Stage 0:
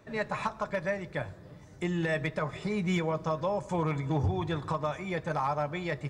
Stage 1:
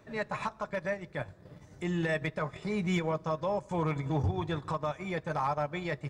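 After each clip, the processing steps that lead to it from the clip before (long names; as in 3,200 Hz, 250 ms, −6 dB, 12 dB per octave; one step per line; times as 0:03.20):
transient designer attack −4 dB, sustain −8 dB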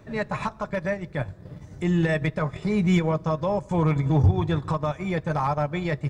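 low-shelf EQ 240 Hz +9 dB
level +4.5 dB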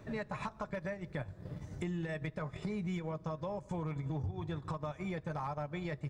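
downward compressor 6 to 1, threshold −33 dBFS, peak gain reduction 17.5 dB
level −3 dB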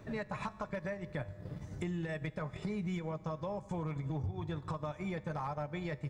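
tuned comb filter 100 Hz, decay 1.8 s, mix 50%
level +6 dB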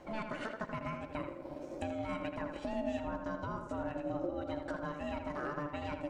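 feedback echo with a low-pass in the loop 81 ms, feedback 45%, low-pass 3,200 Hz, level −6 dB
ring modulation 440 Hz
level +1.5 dB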